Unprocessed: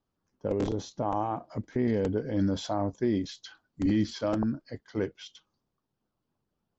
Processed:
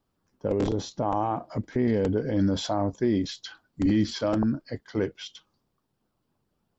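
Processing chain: notch 6300 Hz, Q 17; in parallel at 0 dB: limiter -26.5 dBFS, peak gain reduction 9.5 dB

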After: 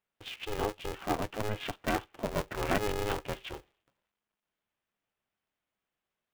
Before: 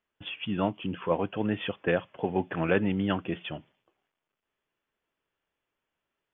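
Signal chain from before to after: polarity switched at an audio rate 210 Hz; gain -4.5 dB

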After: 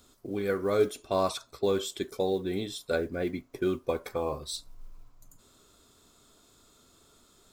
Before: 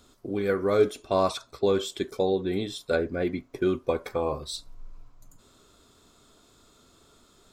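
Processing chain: high shelf 7700 Hz +8.5 dB; modulation noise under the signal 34 dB; gain -3.5 dB

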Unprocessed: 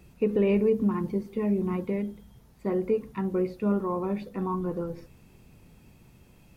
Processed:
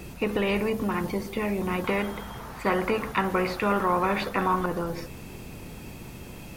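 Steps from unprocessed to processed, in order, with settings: 1.84–4.66 bell 1200 Hz +14.5 dB 1.9 oct; spectral compressor 2:1

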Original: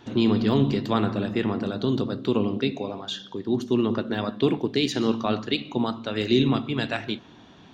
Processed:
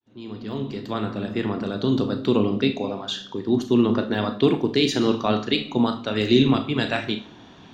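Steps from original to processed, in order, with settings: opening faded in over 2.16 s; Schroeder reverb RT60 0.31 s, combs from 26 ms, DRR 8 dB; gain +3 dB

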